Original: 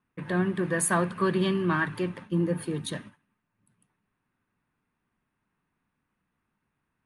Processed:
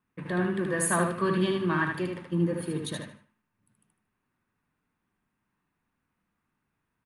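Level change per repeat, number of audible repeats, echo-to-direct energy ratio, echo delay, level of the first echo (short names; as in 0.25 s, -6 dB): -11.0 dB, 3, -3.5 dB, 76 ms, -4.0 dB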